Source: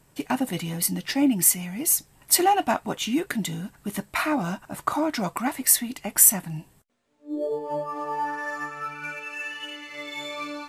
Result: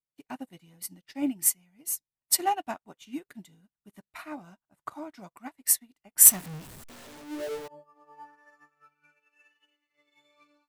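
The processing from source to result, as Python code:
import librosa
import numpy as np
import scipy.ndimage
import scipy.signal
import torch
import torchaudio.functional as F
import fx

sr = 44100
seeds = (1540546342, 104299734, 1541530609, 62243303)

y = fx.zero_step(x, sr, step_db=-20.5, at=(6.25, 7.68))
y = fx.upward_expand(y, sr, threshold_db=-43.0, expansion=2.5)
y = y * 10.0 ** (1.5 / 20.0)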